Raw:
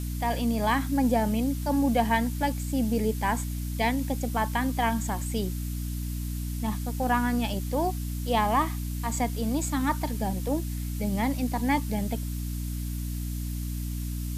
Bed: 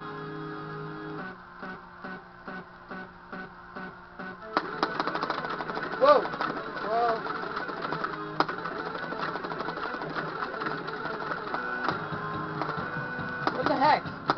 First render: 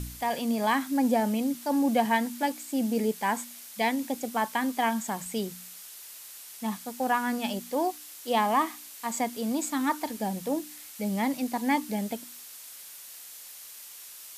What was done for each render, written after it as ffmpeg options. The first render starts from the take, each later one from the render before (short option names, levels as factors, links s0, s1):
-af "bandreject=f=60:t=h:w=4,bandreject=f=120:t=h:w=4,bandreject=f=180:t=h:w=4,bandreject=f=240:t=h:w=4,bandreject=f=300:t=h:w=4"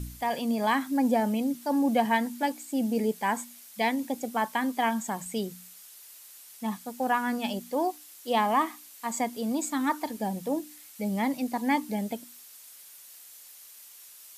-af "afftdn=nr=6:nf=-46"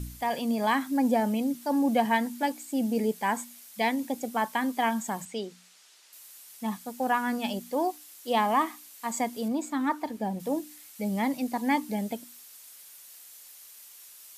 -filter_complex "[0:a]asettb=1/sr,asplit=3[s0][s1][s2];[s0]atrim=end=5.254[s3];[s1]atrim=start=5.25:end=6.13,asetpts=PTS-STARTPTS,afade=t=in:d=0.004:c=qsin,afade=t=out:st=0.876:d=0.004:c=qsin,highpass=290,lowpass=5800[s4];[s2]atrim=start=6.126[s5];[s3][s4]acrossfade=d=0.004:c1=hsin:c2=qsin[s6];[s6][s5]acrossfade=d=0.004:c1=qsin:c2=hsin,asettb=1/sr,asplit=3[s7][s8][s9];[s7]atrim=end=9.484[s10];[s8]atrim=start=9.48:end=10.4,asetpts=PTS-STARTPTS,afade=t=in:d=0.004:c=qsin,afade=t=out:st=0.916:d=0.004:c=qsin,highshelf=f=3800:g=-10[s11];[s9]atrim=start=10.396[s12];[s10][s11]acrossfade=d=0.004:c1=hsin:c2=qsin[s13];[s13][s12]acrossfade=d=0.004:c1=qsin:c2=hsin"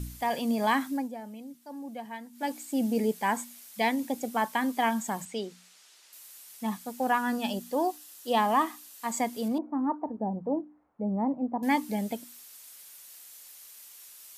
-filter_complex "[0:a]asettb=1/sr,asplit=3[s0][s1][s2];[s0]atrim=end=7.184[s3];[s1]atrim=start=7.18:end=9.03,asetpts=PTS-STARTPTS,afade=t=in:d=0.004:c=qsin,afade=t=out:st=1.846:d=0.004:c=qsin,bandreject=f=2200:w=8.3[s4];[s2]atrim=start=9.026[s5];[s3][s4]acrossfade=d=0.004:c1=hsin:c2=qsin[s6];[s6][s5]acrossfade=d=0.004:c1=qsin:c2=hsin,asettb=1/sr,asplit=3[s7][s8][s9];[s7]atrim=end=9.584[s10];[s8]atrim=start=9.58:end=11.63,asetpts=PTS-STARTPTS,afade=t=in:d=0.004:c=qsin,afade=t=out:st=2.046:d=0.004:c=qsin,lowpass=f=1000:w=0.5412,lowpass=f=1000:w=1.3066[s11];[s9]atrim=start=11.626[s12];[s10][s11]acrossfade=d=0.004:c1=hsin:c2=qsin[s13];[s13][s12]acrossfade=d=0.004:c1=qsin:c2=hsin,asplit=3[s14][s15][s16];[s14]atrim=end=1.09,asetpts=PTS-STARTPTS,afade=t=out:st=0.85:d=0.24:silence=0.16788[s17];[s15]atrim=start=1.09:end=2.32,asetpts=PTS-STARTPTS,volume=0.168[s18];[s16]atrim=start=2.32,asetpts=PTS-STARTPTS,afade=t=in:d=0.24:silence=0.16788[s19];[s17][s18][s19]concat=n=3:v=0:a=1"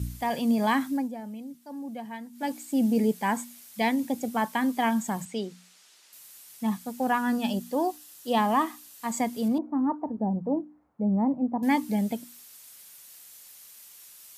-af "highpass=58,bass=f=250:g=8,treble=f=4000:g=0"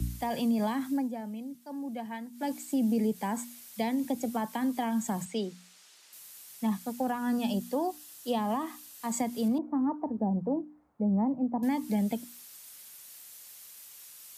-filter_complex "[0:a]acrossover=split=150[s0][s1];[s1]acompressor=threshold=0.0501:ratio=6[s2];[s0][s2]amix=inputs=2:normalize=0,acrossover=split=220|920|3500[s3][s4][s5][s6];[s5]alimiter=level_in=3.98:limit=0.0631:level=0:latency=1:release=74,volume=0.251[s7];[s3][s4][s7][s6]amix=inputs=4:normalize=0"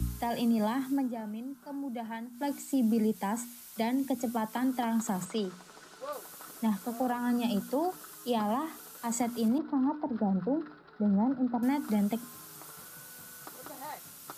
-filter_complex "[1:a]volume=0.0944[s0];[0:a][s0]amix=inputs=2:normalize=0"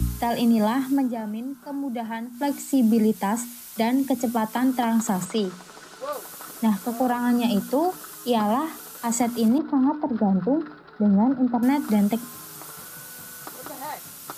-af "volume=2.51"